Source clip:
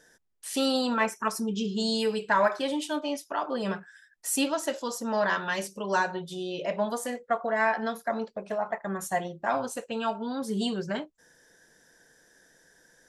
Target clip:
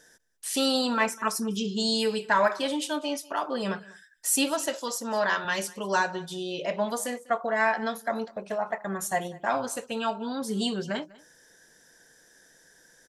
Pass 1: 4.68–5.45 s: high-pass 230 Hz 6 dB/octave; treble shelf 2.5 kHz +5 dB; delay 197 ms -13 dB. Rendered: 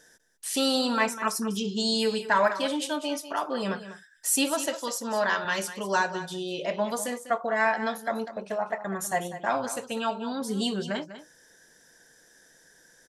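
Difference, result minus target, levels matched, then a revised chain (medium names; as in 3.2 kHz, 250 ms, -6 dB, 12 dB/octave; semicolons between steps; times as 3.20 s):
echo-to-direct +9.5 dB
4.68–5.45 s: high-pass 230 Hz 6 dB/octave; treble shelf 2.5 kHz +5 dB; delay 197 ms -22.5 dB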